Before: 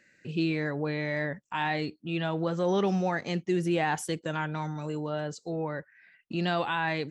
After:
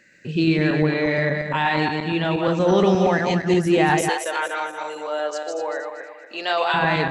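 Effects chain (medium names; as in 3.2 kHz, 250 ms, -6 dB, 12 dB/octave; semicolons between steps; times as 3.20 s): backward echo that repeats 118 ms, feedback 60%, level -3.5 dB; 4.09–6.74 s: high-pass 460 Hz 24 dB/octave; trim +7.5 dB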